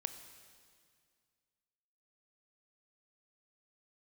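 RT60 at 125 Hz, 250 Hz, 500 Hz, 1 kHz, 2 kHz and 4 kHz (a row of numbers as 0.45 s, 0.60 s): 2.4 s, 2.3 s, 2.1 s, 2.0 s, 2.0 s, 2.0 s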